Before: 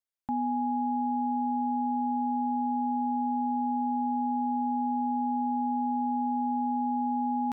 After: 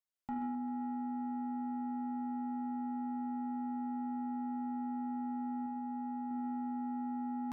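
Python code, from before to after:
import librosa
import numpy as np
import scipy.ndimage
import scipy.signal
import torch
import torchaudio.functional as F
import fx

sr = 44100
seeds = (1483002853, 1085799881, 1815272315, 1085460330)

p1 = fx.low_shelf(x, sr, hz=320.0, db=-3.5, at=(5.66, 6.31))
p2 = p1 + fx.echo_thinned(p1, sr, ms=131, feedback_pct=74, hz=550.0, wet_db=-8.5, dry=0)
p3 = fx.room_shoebox(p2, sr, seeds[0], volume_m3=97.0, walls='mixed', distance_m=0.47)
p4 = 10.0 ** (-26.5 / 20.0) * np.tanh(p3 / 10.0 ** (-26.5 / 20.0))
y = p4 * 10.0 ** (-5.0 / 20.0)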